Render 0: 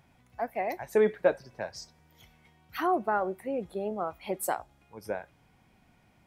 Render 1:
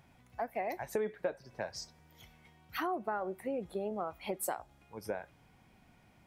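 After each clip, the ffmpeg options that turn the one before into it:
-af "acompressor=threshold=-33dB:ratio=4"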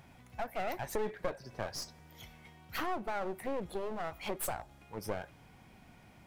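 -filter_complex "[0:a]asplit=2[a][b];[b]alimiter=level_in=9dB:limit=-24dB:level=0:latency=1:release=16,volume=-9dB,volume=-1dB[c];[a][c]amix=inputs=2:normalize=0,aeval=exprs='clip(val(0),-1,0.00668)':c=same"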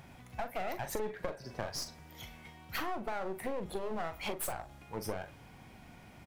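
-filter_complex "[0:a]acompressor=threshold=-36dB:ratio=6,asplit=2[a][b];[b]adelay=42,volume=-10.5dB[c];[a][c]amix=inputs=2:normalize=0,volume=3.5dB"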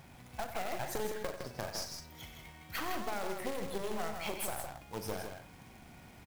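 -af "acrusher=bits=2:mode=log:mix=0:aa=0.000001,aecho=1:1:93.29|160.3:0.282|0.501,volume=-2dB"

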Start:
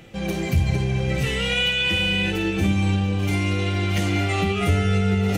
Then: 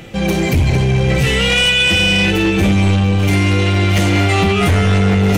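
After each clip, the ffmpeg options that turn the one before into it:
-af "aeval=exprs='0.376*sin(PI/2*2.24*val(0)/0.376)':c=same"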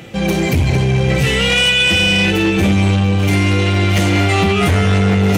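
-af "highpass=62"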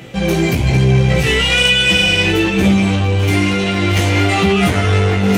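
-af "flanger=delay=15.5:depth=2.8:speed=1.1,volume=3.5dB"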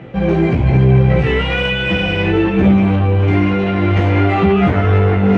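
-af "lowpass=1.6k,volume=1.5dB"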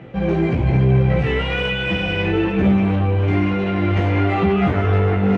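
-filter_complex "[0:a]asplit=2[a][b];[b]adelay=300,highpass=300,lowpass=3.4k,asoftclip=type=hard:threshold=-10dB,volume=-12dB[c];[a][c]amix=inputs=2:normalize=0,volume=-4.5dB"

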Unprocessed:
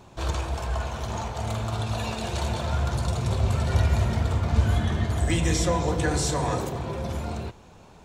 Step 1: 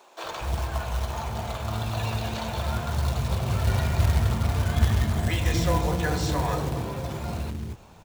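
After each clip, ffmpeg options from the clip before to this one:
-filter_complex "[0:a]acrossover=split=5600[a][b];[b]acompressor=threshold=-54dB:ratio=4:attack=1:release=60[c];[a][c]amix=inputs=2:normalize=0,acrossover=split=380[d][e];[d]adelay=240[f];[f][e]amix=inputs=2:normalize=0,acrusher=bits=4:mode=log:mix=0:aa=0.000001"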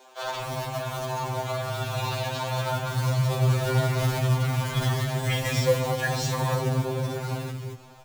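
-af "afftfilt=real='re*2.45*eq(mod(b,6),0)':imag='im*2.45*eq(mod(b,6),0)':win_size=2048:overlap=0.75,volume=4.5dB"

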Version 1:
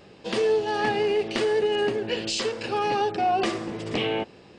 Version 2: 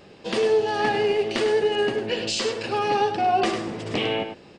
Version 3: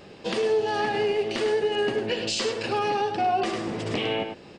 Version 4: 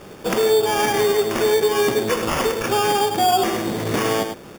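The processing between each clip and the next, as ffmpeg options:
-af "bandreject=f=60:t=h:w=6,bandreject=f=120:t=h:w=6,aecho=1:1:101:0.376,volume=1.5dB"
-af "alimiter=limit=-18.5dB:level=0:latency=1:release=349,volume=2dB"
-af "acrusher=samples=11:mix=1:aa=0.000001,volume=6.5dB"

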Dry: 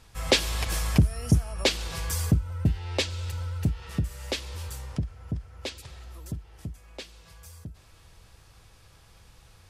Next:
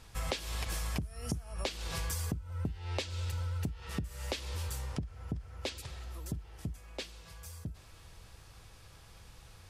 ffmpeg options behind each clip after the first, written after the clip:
-af "acompressor=threshold=-32dB:ratio=16"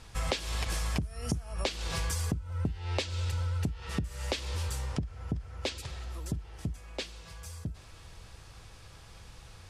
-af "lowpass=10k,volume=4dB"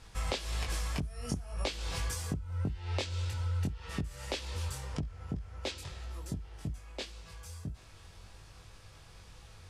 -af "flanger=delay=19.5:depth=2.6:speed=1.8"

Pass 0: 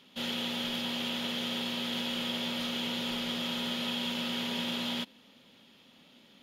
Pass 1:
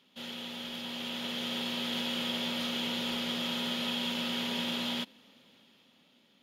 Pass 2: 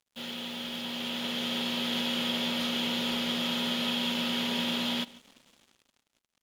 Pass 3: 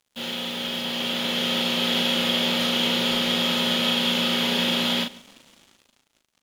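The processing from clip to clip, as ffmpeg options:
-af "lowshelf=f=64:g=-8.5,dynaudnorm=f=220:g=11:m=7.5dB,volume=-7dB"
-filter_complex "[0:a]acrusher=bits=8:mix=0:aa=0.5,asplit=2[a][b];[b]adelay=145.8,volume=-21dB,highshelf=f=4k:g=-3.28[c];[a][c]amix=inputs=2:normalize=0,volume=3dB"
-filter_complex "[0:a]asplit=2[a][b];[b]adelay=39,volume=-5dB[c];[a][c]amix=inputs=2:normalize=0,volume=7dB"

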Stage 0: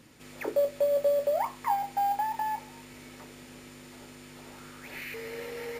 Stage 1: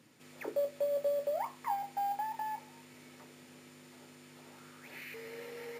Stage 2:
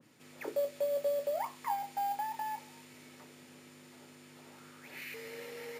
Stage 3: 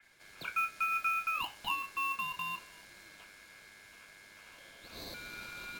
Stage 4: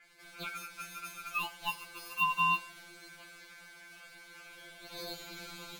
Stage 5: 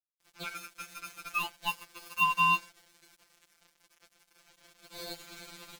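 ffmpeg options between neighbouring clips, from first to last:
-af "highpass=f=110:w=0.5412,highpass=f=110:w=1.3066,volume=-7dB"
-af "adynamicequalizer=threshold=0.00282:dfrequency=2100:dqfactor=0.7:tfrequency=2100:tqfactor=0.7:attack=5:release=100:ratio=0.375:range=2:mode=boostabove:tftype=highshelf"
-af "aeval=exprs='val(0)*sin(2*PI*1900*n/s)':c=same,volume=2.5dB"
-af "afftfilt=real='re*2.83*eq(mod(b,8),0)':imag='im*2.83*eq(mod(b,8),0)':win_size=2048:overlap=0.75,volume=5dB"
-af "aeval=exprs='sgn(val(0))*max(abs(val(0))-0.00422,0)':c=same,volume=4dB"

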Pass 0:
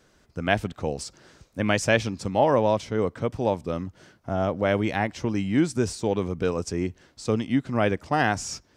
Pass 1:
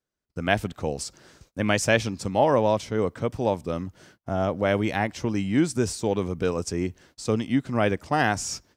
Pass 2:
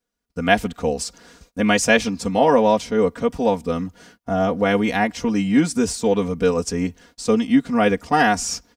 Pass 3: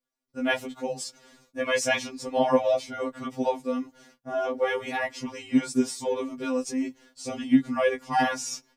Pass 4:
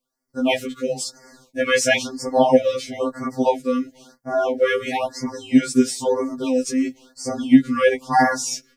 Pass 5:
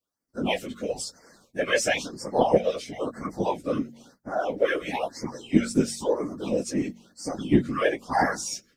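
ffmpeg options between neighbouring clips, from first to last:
-af "agate=range=-28dB:threshold=-54dB:ratio=16:detection=peak,highshelf=f=9.8k:g=9.5"
-af "aecho=1:1:4.2:0.92,volume=3dB"
-af "afftfilt=real='re*2.45*eq(mod(b,6),0)':imag='im*2.45*eq(mod(b,6),0)':win_size=2048:overlap=0.75,volume=-5dB"
-af "afftfilt=real='re*(1-between(b*sr/1024,740*pow(3200/740,0.5+0.5*sin(2*PI*1*pts/sr))/1.41,740*pow(3200/740,0.5+0.5*sin(2*PI*1*pts/sr))*1.41))':imag='im*(1-between(b*sr/1024,740*pow(3200/740,0.5+0.5*sin(2*PI*1*pts/sr))/1.41,740*pow(3200/740,0.5+0.5*sin(2*PI*1*pts/sr))*1.41))':win_size=1024:overlap=0.75,volume=7.5dB"
-af "afftfilt=real='hypot(re,im)*cos(2*PI*random(0))':imag='hypot(re,im)*sin(2*PI*random(1))':win_size=512:overlap=0.75,bandreject=f=46.32:t=h:w=4,bandreject=f=92.64:t=h:w=4,bandreject=f=138.96:t=h:w=4,bandreject=f=185.28:t=h:w=4,bandreject=f=231.6:t=h:w=4"

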